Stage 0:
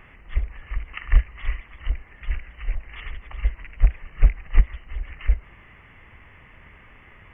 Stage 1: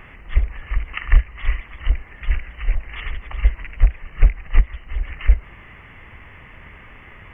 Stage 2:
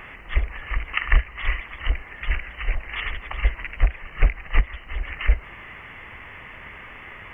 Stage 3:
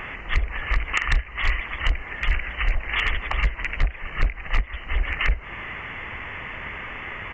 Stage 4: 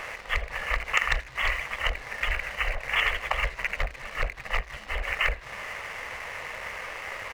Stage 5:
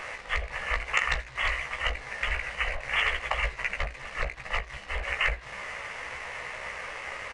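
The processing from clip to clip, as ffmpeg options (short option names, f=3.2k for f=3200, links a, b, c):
-af "alimiter=limit=-8.5dB:level=0:latency=1:release=416,volume=6.5dB"
-af "lowshelf=f=280:g=-9.5,volume=4.5dB"
-af "acompressor=threshold=-23dB:ratio=4,aresample=16000,volume=19.5dB,asoftclip=hard,volume=-19.5dB,aresample=44100,volume=6.5dB"
-filter_complex "[0:a]lowshelf=f=400:t=q:w=3:g=-8.5,aeval=exprs='sgn(val(0))*max(abs(val(0))-0.0075,0)':c=same,asplit=5[a][b][c][d][e];[b]adelay=80,afreqshift=-80,volume=-22dB[f];[c]adelay=160,afreqshift=-160,volume=-27.7dB[g];[d]adelay=240,afreqshift=-240,volume=-33.4dB[h];[e]adelay=320,afreqshift=-320,volume=-39dB[i];[a][f][g][h][i]amix=inputs=5:normalize=0"
-filter_complex "[0:a]asplit=2[a][b];[b]adelay=16,volume=-6dB[c];[a][c]amix=inputs=2:normalize=0,aresample=22050,aresample=44100,volume=-2dB"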